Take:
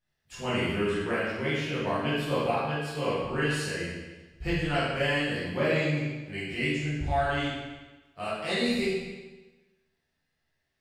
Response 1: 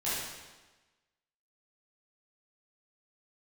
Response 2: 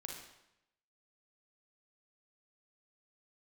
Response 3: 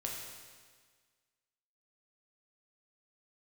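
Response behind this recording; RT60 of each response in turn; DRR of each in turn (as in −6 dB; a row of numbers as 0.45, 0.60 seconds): 1; 1.2, 0.85, 1.6 seconds; −11.5, 0.0, −2.0 decibels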